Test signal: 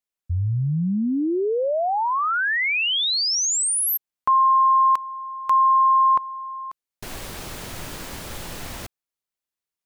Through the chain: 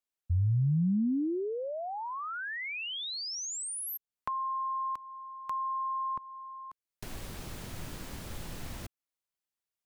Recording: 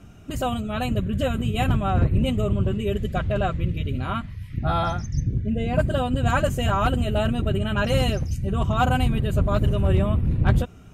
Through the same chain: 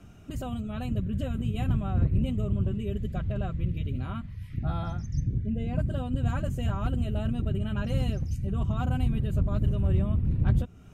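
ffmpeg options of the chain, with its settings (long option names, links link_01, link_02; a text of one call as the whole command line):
ffmpeg -i in.wav -filter_complex "[0:a]acrossover=split=290[link_01][link_02];[link_02]acompressor=threshold=-54dB:ratio=1.5:attack=29:release=270:knee=2.83:detection=peak[link_03];[link_01][link_03]amix=inputs=2:normalize=0,volume=-4dB" out.wav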